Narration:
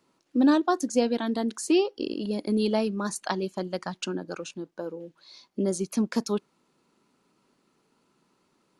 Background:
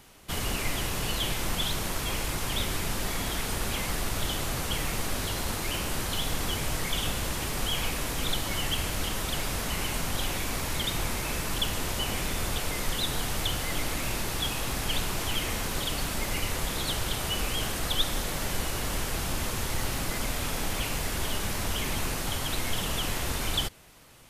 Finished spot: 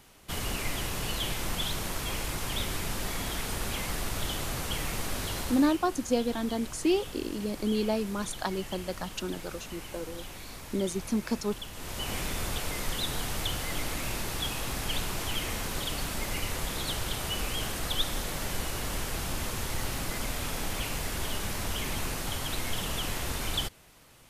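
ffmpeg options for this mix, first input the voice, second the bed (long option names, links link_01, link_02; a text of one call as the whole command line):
ffmpeg -i stem1.wav -i stem2.wav -filter_complex "[0:a]adelay=5150,volume=-3.5dB[link_01];[1:a]volume=7.5dB,afade=type=out:start_time=5.4:duration=0.38:silence=0.316228,afade=type=in:start_time=11.73:duration=0.42:silence=0.316228[link_02];[link_01][link_02]amix=inputs=2:normalize=0" out.wav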